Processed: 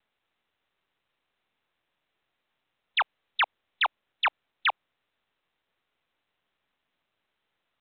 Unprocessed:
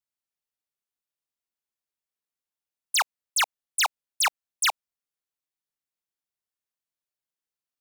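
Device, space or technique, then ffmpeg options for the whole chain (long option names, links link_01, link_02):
telephone: -filter_complex "[0:a]asettb=1/sr,asplit=3[link_01][link_02][link_03];[link_01]atrim=end=2.984[link_04];[link_02]atrim=start=2.98:end=3.82,asetpts=PTS-STARTPTS,afade=type=in:duration=0.004:curve=qsin,afade=type=out:start_time=0.836:duration=0.004:curve=qsin,equalizer=frequency=15000:width_type=o:width=2:gain=3.5[link_05];[link_03]atrim=start=3.816[link_06];[link_04][link_05]acrossfade=duration=0.004:curve1=hsin:curve2=qsin[link_07];[link_07][link_06]acrossfade=duration=0.004:curve1=qsin:curve2=hsin,highpass=330,lowpass=3400,asoftclip=type=tanh:threshold=-22.5dB,volume=4dB" -ar 8000 -c:a pcm_mulaw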